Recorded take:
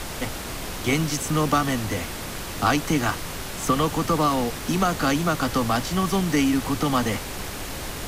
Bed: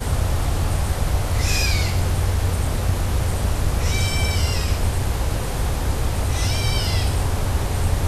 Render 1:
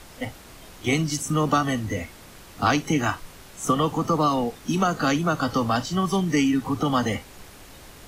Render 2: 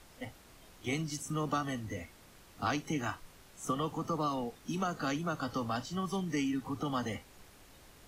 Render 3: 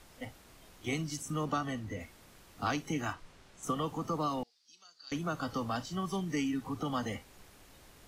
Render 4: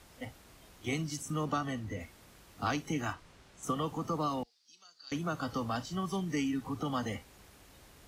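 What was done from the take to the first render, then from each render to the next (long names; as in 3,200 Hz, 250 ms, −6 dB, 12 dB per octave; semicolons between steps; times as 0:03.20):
noise reduction from a noise print 13 dB
level −12 dB
0:01.44–0:01.99: high-shelf EQ 11,000 Hz → 5,200 Hz −8 dB; 0:03.13–0:03.63: high-frequency loss of the air 54 metres; 0:04.43–0:05.12: resonant band-pass 4,700 Hz, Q 6.2
high-pass filter 43 Hz; low-shelf EQ 63 Hz +6 dB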